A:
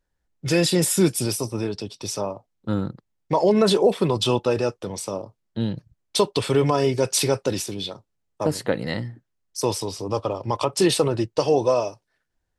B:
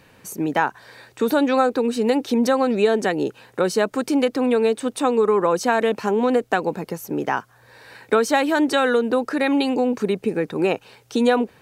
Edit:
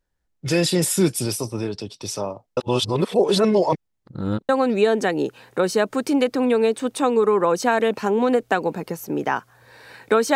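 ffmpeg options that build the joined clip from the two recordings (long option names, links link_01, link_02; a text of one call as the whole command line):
ffmpeg -i cue0.wav -i cue1.wav -filter_complex "[0:a]apad=whole_dur=10.35,atrim=end=10.35,asplit=2[link_01][link_02];[link_01]atrim=end=2.572[link_03];[link_02]atrim=start=2.568:end=4.492,asetpts=PTS-STARTPTS,areverse[link_04];[1:a]atrim=start=2.498:end=8.36[link_05];[link_03][link_04]acrossfade=duration=0.004:curve1=hsin:curve2=hsin[link_06];[link_06][link_05]acrossfade=duration=0.004:curve1=hsin:curve2=hsin" out.wav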